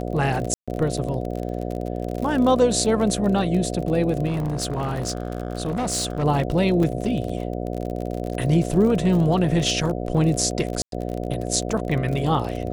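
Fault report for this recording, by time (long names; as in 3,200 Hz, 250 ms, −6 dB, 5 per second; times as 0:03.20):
mains buzz 60 Hz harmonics 12 −28 dBFS
surface crackle 36 per second −27 dBFS
0:00.54–0:00.68: drop-out 136 ms
0:04.26–0:06.24: clipping −20.5 dBFS
0:06.83: drop-out 3.8 ms
0:10.82–0:10.92: drop-out 102 ms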